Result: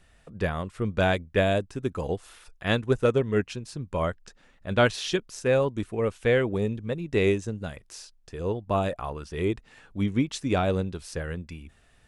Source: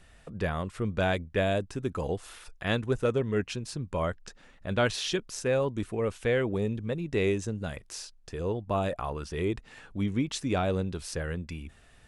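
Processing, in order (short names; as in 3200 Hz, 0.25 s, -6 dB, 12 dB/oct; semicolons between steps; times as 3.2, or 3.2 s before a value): upward expander 1.5:1, over -39 dBFS; gain +5.5 dB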